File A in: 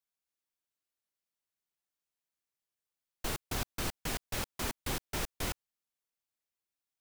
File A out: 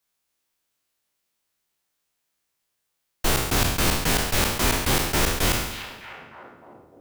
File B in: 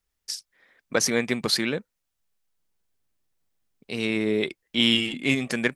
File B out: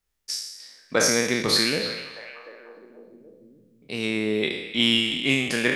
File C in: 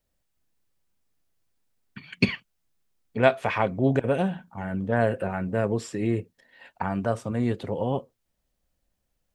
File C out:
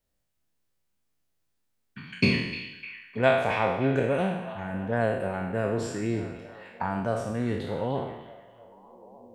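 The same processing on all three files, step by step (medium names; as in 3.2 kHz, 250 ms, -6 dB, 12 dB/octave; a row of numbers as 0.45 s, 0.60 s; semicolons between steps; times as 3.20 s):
spectral sustain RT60 0.91 s; repeats whose band climbs or falls 303 ms, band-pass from 3.2 kHz, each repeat -0.7 oct, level -9 dB; peak normalisation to -6 dBFS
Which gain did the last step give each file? +11.5 dB, -1.0 dB, -4.0 dB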